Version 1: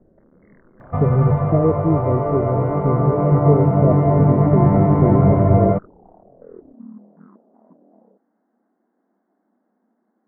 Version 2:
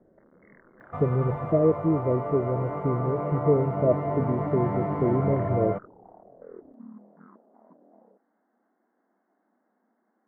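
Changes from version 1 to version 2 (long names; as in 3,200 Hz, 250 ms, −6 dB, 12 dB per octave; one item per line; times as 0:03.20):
speech: send +11.5 dB
second sound −8.0 dB
master: add spectral tilt +3 dB per octave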